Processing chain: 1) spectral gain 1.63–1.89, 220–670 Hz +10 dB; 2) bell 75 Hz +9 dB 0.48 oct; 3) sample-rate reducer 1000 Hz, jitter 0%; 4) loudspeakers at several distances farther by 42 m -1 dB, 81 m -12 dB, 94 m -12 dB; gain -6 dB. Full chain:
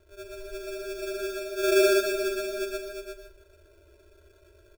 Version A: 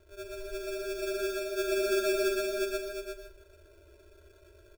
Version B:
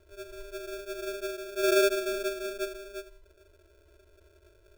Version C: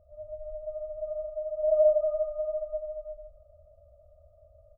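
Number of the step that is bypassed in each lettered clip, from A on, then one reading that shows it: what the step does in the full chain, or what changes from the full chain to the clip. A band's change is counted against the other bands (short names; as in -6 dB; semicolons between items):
1, crest factor change -3.5 dB; 4, 1 kHz band +2.0 dB; 3, momentary loudness spread change -2 LU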